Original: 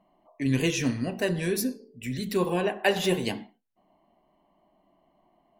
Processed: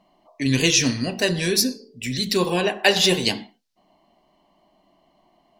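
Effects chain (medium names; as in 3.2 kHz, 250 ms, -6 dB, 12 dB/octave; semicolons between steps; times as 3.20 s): peaking EQ 4.8 kHz +14 dB 1.4 oct; trim +4 dB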